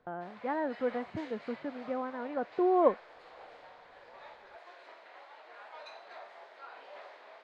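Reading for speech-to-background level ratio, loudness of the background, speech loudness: 17.5 dB, -50.5 LUFS, -33.0 LUFS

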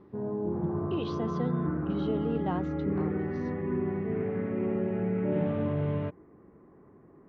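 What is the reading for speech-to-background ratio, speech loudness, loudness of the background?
-5.0 dB, -36.5 LUFS, -31.5 LUFS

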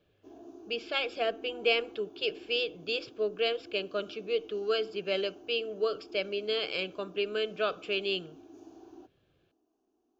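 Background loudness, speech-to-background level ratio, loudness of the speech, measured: -52.0 LUFS, 20.0 dB, -32.0 LUFS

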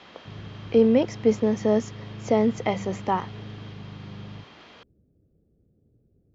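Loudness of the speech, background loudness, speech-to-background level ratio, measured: -23.5 LUFS, -40.5 LUFS, 17.0 dB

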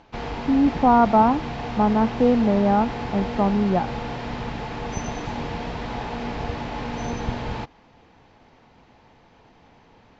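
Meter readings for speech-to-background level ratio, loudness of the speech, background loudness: 10.0 dB, -20.5 LUFS, -30.5 LUFS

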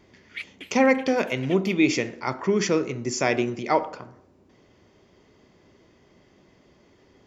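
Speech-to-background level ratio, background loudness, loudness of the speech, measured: 18.0 dB, -41.5 LUFS, -23.5 LUFS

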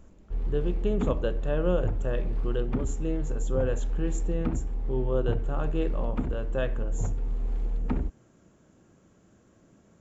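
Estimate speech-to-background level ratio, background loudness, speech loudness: 0.5 dB, -33.0 LUFS, -32.5 LUFS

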